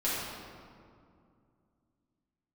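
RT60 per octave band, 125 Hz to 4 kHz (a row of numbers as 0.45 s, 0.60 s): 3.2 s, 3.2 s, 2.4 s, 2.2 s, 1.6 s, 1.2 s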